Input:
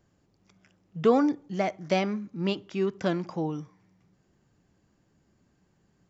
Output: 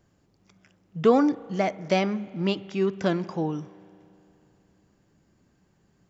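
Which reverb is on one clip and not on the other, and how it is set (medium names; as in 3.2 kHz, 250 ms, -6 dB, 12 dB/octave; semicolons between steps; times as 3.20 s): spring tank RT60 3 s, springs 36 ms, chirp 35 ms, DRR 19 dB; trim +2.5 dB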